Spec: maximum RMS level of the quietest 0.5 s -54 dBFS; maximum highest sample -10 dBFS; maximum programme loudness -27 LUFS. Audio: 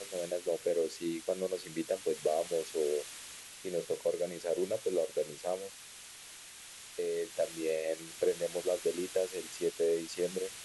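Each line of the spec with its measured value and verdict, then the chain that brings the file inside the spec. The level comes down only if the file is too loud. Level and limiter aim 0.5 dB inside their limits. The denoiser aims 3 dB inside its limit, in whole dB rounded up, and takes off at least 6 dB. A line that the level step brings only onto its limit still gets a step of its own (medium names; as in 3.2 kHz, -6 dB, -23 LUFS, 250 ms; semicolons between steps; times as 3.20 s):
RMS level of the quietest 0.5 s -51 dBFS: fail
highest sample -18.5 dBFS: pass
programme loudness -35.0 LUFS: pass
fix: noise reduction 6 dB, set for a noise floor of -51 dBFS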